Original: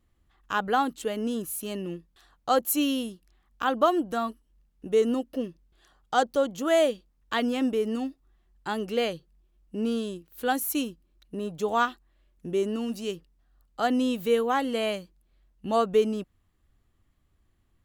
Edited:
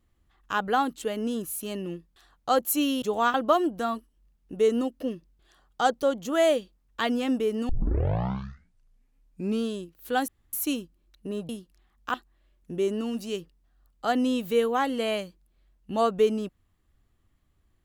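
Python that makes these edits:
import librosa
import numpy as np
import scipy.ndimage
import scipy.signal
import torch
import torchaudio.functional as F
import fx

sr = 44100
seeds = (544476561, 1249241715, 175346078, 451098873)

y = fx.edit(x, sr, fx.swap(start_s=3.02, length_s=0.65, other_s=11.57, other_length_s=0.32),
    fx.tape_start(start_s=8.02, length_s=1.94),
    fx.insert_room_tone(at_s=10.61, length_s=0.25), tone=tone)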